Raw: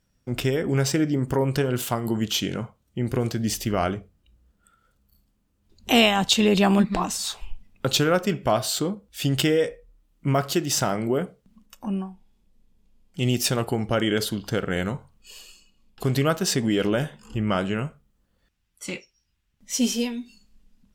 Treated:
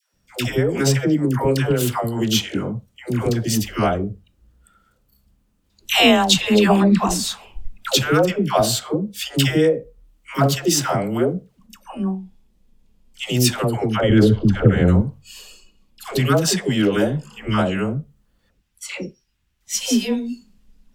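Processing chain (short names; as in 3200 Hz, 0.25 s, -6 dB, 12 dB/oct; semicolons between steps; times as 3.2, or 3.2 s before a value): 13.96–14.88 RIAA curve playback; dispersion lows, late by 0.142 s, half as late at 640 Hz; gain +4.5 dB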